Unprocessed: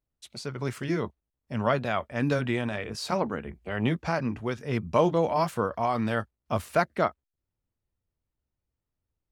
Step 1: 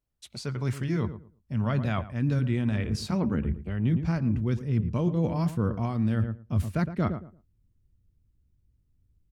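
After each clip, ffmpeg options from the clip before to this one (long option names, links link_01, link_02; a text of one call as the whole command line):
ffmpeg -i in.wav -filter_complex "[0:a]asubboost=boost=9.5:cutoff=230,asplit=2[link_01][link_02];[link_02]adelay=113,lowpass=frequency=1300:poles=1,volume=-13.5dB,asplit=2[link_03][link_04];[link_04]adelay=113,lowpass=frequency=1300:poles=1,volume=0.22,asplit=2[link_05][link_06];[link_06]adelay=113,lowpass=frequency=1300:poles=1,volume=0.22[link_07];[link_01][link_03][link_05][link_07]amix=inputs=4:normalize=0,areverse,acompressor=threshold=-24dB:ratio=4,areverse" out.wav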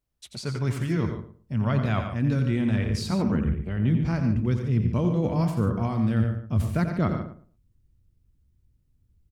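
ffmpeg -i in.wav -af "aecho=1:1:87.46|145.8:0.398|0.282,volume=2dB" out.wav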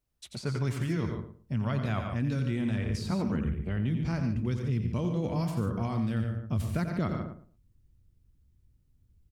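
ffmpeg -i in.wav -filter_complex "[0:a]acrossover=split=2400|5700[link_01][link_02][link_03];[link_01]acompressor=threshold=-27dB:ratio=4[link_04];[link_02]acompressor=threshold=-48dB:ratio=4[link_05];[link_03]acompressor=threshold=-50dB:ratio=4[link_06];[link_04][link_05][link_06]amix=inputs=3:normalize=0" out.wav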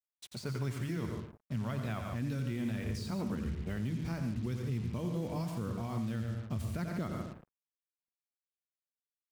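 ffmpeg -i in.wav -af "bandreject=frequency=50:width_type=h:width=6,bandreject=frequency=100:width_type=h:width=6,bandreject=frequency=150:width_type=h:width=6,alimiter=limit=-23.5dB:level=0:latency=1:release=144,acrusher=bits=7:mix=0:aa=0.5,volume=-3.5dB" out.wav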